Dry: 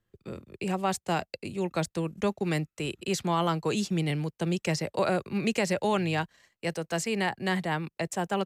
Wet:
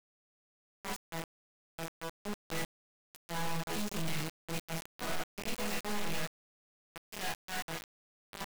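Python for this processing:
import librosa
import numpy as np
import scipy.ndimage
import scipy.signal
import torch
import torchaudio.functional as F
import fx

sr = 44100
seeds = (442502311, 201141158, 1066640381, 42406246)

y = np.maximum(x, 0.0)
y = fx.resonator_bank(y, sr, root=52, chord='major', decay_s=0.76)
y = fx.quant_dither(y, sr, seeds[0], bits=6, dither='none')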